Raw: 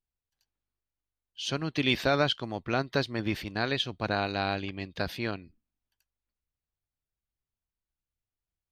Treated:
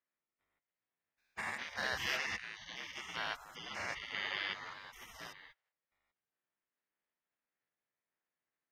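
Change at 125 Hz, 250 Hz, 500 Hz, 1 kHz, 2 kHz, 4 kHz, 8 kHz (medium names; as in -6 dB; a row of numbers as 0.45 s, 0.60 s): -24.0 dB, -24.5 dB, -19.5 dB, -11.0 dB, -5.0 dB, -9.5 dB, -4.0 dB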